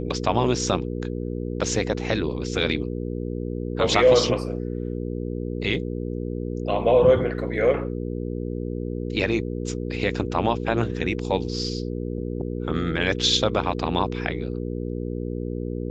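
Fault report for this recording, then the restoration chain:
mains hum 60 Hz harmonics 8 −29 dBFS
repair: hum removal 60 Hz, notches 8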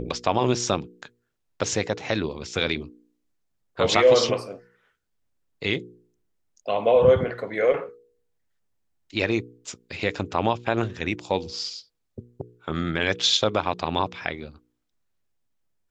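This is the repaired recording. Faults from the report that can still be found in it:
none of them is left

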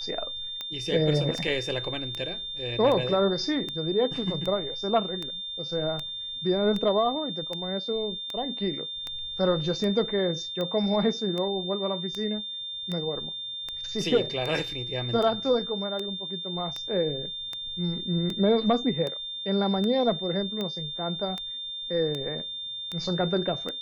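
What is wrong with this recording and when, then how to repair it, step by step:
scratch tick 78 rpm −19 dBFS
whistle 3,600 Hz −33 dBFS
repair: click removal
notch filter 3,600 Hz, Q 30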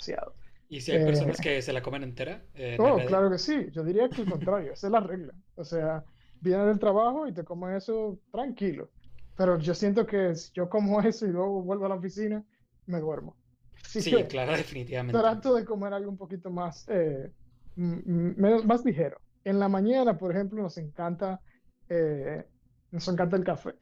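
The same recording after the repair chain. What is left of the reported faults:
none of them is left

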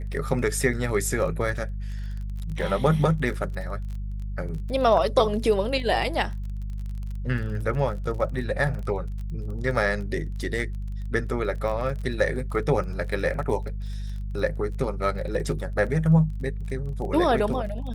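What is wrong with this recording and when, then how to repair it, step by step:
surface crackle 26 per second −34 dBFS
mains hum 50 Hz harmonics 4 −31 dBFS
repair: click removal
hum removal 50 Hz, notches 4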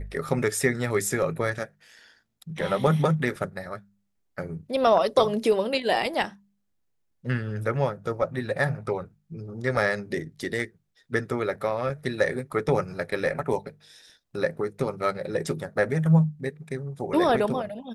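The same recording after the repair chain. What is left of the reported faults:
none of them is left

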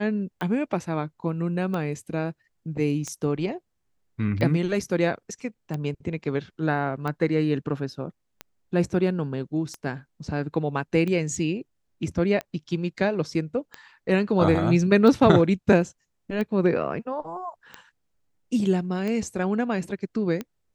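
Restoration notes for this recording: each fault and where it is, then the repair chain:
scratch tick 45 rpm −18 dBFS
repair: click removal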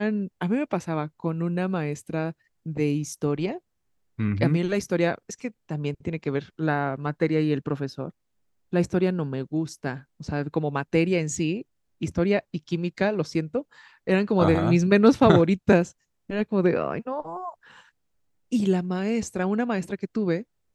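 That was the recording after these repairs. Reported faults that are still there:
none of them is left

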